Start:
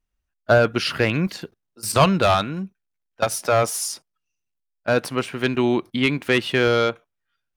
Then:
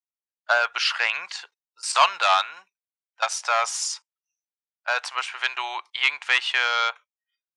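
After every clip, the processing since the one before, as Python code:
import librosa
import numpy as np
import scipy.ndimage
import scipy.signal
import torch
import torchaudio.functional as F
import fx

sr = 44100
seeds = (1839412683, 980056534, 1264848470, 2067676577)

y = fx.noise_reduce_blind(x, sr, reduce_db=23)
y = scipy.signal.sosfilt(scipy.signal.ellip(3, 1.0, 50, [850.0, 7600.0], 'bandpass', fs=sr, output='sos'), y)
y = y * librosa.db_to_amplitude(2.5)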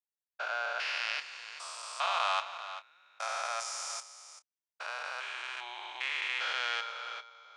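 y = fx.spec_steps(x, sr, hold_ms=400)
y = fx.doubler(y, sr, ms=28.0, db=-12.5)
y = y + 10.0 ** (-12.5 / 20.0) * np.pad(y, (int(389 * sr / 1000.0), 0))[:len(y)]
y = y * librosa.db_to_amplitude(-7.0)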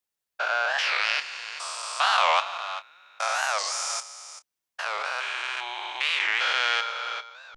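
y = fx.record_warp(x, sr, rpm=45.0, depth_cents=250.0)
y = y * librosa.db_to_amplitude(9.0)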